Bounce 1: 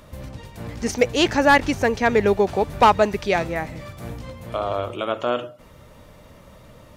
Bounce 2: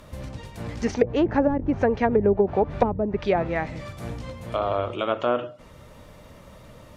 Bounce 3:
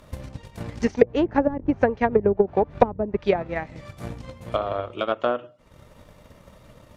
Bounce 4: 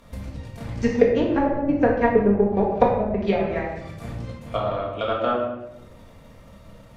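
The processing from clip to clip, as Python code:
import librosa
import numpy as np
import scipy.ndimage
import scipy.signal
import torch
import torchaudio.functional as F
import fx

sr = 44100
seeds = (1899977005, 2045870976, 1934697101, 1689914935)

y1 = fx.env_lowpass_down(x, sr, base_hz=340.0, full_db=-12.5)
y2 = fx.transient(y1, sr, attack_db=8, sustain_db=-7)
y2 = y2 * librosa.db_to_amplitude(-3.5)
y3 = fx.room_shoebox(y2, sr, seeds[0], volume_m3=370.0, walls='mixed', distance_m=1.7)
y3 = y3 * librosa.db_to_amplitude(-3.5)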